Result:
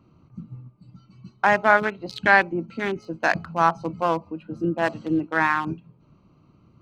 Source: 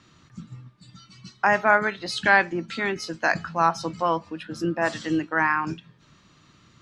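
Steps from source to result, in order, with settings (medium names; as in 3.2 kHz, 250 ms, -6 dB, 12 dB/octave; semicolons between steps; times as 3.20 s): local Wiener filter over 25 samples; trim +2 dB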